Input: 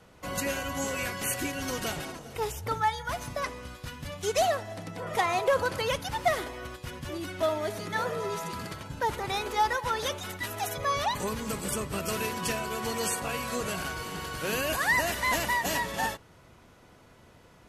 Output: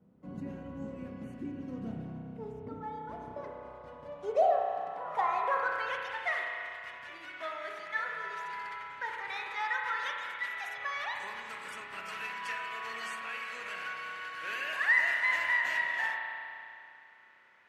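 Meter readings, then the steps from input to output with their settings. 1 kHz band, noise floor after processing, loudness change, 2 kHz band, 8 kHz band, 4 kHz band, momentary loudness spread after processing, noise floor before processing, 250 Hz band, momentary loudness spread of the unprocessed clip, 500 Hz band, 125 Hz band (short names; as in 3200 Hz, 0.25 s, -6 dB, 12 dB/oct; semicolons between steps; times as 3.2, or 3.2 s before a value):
-4.5 dB, -56 dBFS, -3.5 dB, +0.5 dB, -21.5 dB, -9.5 dB, 16 LU, -56 dBFS, -7.5 dB, 11 LU, -7.0 dB, -11.5 dB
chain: spring tank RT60 2.6 s, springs 31 ms, chirp 35 ms, DRR 0.5 dB; band-pass sweep 210 Hz -> 1900 Hz, 2.45–6.33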